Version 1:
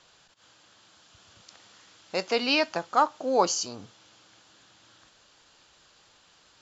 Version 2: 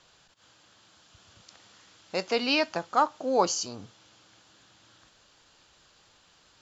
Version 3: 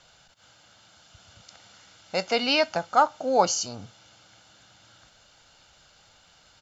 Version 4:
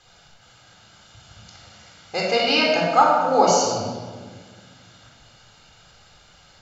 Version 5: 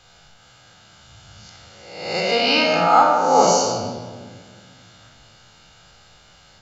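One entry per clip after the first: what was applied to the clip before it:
low shelf 190 Hz +4.5 dB; gain -1.5 dB
comb 1.4 ms, depth 45%; gain +2.5 dB
shoebox room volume 1800 m³, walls mixed, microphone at 3.9 m; gain -1 dB
spectral swells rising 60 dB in 0.88 s; gain -1 dB

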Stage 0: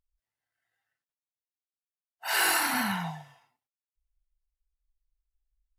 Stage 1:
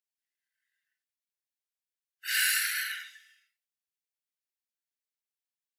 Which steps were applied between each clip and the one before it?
steep high-pass 1500 Hz 72 dB/oct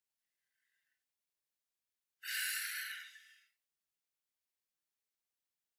compressor 1.5:1, threshold -57 dBFS, peak gain reduction 12 dB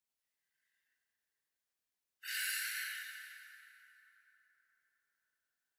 plate-style reverb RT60 3.9 s, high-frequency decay 0.55×, DRR 2.5 dB; gain -1 dB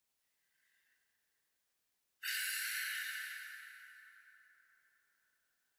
compressor 6:1, threshold -43 dBFS, peak gain reduction 8.5 dB; gain +6.5 dB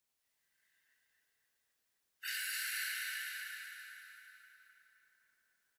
feedback echo 0.259 s, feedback 51%, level -4 dB; gain -1 dB

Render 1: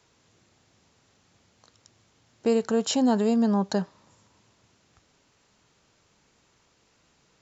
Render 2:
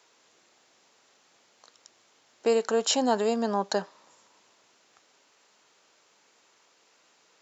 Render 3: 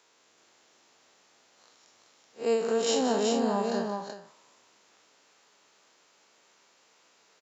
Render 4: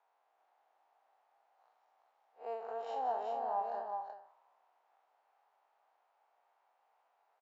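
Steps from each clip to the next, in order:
HPF 430 Hz 12 dB/oct; gain +3 dB
time blur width 0.108 s; tapped delay 0.178/0.38 s -10.5/-4 dB; ending taper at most 100 dB/s
ladder band-pass 830 Hz, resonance 70%

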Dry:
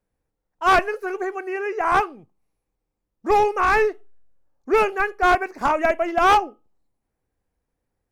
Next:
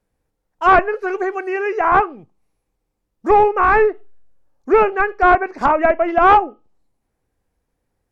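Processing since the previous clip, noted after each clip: treble ducked by the level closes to 1800 Hz, closed at -17 dBFS; gain +5.5 dB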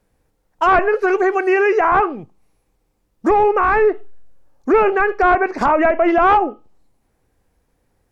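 maximiser +14.5 dB; gain -6.5 dB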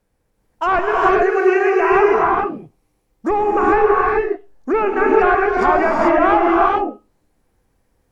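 non-linear reverb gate 0.46 s rising, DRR -2.5 dB; gain -4 dB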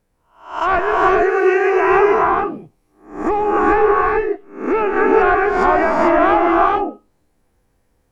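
spectral swells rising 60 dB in 0.46 s; gain -1 dB

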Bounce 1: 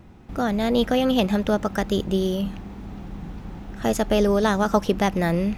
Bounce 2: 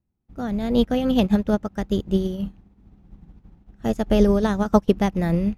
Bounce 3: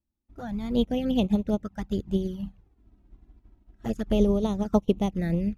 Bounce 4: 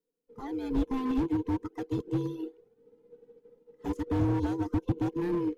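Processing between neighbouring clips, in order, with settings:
low shelf 330 Hz +10.5 dB; upward expander 2.5:1, over -36 dBFS
envelope flanger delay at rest 3.4 ms, full sweep at -16 dBFS; gain -4.5 dB
band inversion scrambler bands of 500 Hz; slew limiter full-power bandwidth 26 Hz; gain -3 dB

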